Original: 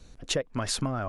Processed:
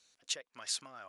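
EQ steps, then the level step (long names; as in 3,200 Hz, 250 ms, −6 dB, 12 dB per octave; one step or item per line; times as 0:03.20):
high-frequency loss of the air 66 metres
first difference
low-shelf EQ 130 Hz −6 dB
+2.0 dB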